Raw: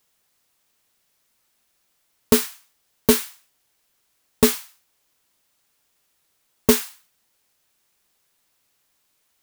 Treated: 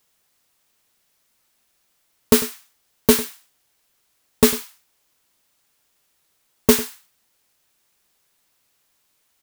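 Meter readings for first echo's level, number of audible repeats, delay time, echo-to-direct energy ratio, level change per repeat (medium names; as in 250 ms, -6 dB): -16.0 dB, 1, 99 ms, -16.0 dB, no regular repeats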